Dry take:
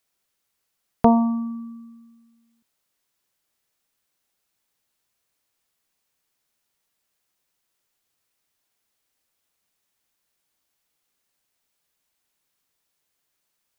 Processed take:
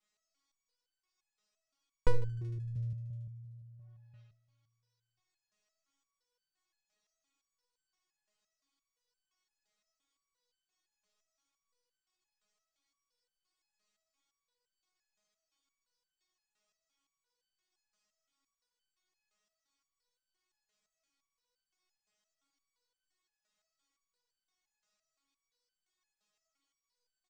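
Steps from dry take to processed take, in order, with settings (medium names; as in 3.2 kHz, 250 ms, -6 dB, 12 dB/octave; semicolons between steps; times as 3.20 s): low-pass that closes with the level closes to 350 Hz, closed at -33 dBFS; gate -53 dBFS, range -13 dB; comb 3.2 ms, depth 91%; compression, threshold -24 dBFS, peak gain reduction 12 dB; wide varispeed 0.505×; thinning echo 76 ms, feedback 84%, high-pass 1 kHz, level -16 dB; simulated room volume 2600 m³, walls furnished, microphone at 0.49 m; resonator arpeggio 5.8 Hz 210–1500 Hz; trim +16.5 dB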